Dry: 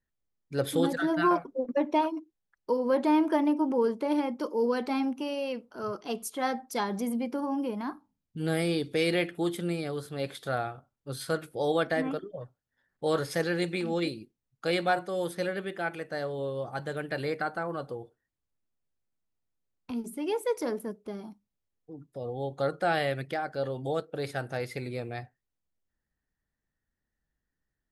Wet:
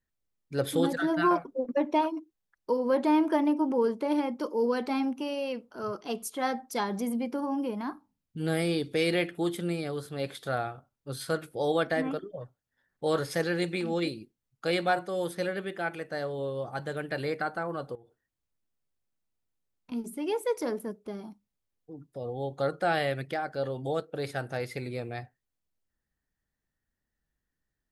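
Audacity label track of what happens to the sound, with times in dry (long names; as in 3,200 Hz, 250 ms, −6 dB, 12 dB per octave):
17.950000	19.920000	downward compressor 5 to 1, threshold −51 dBFS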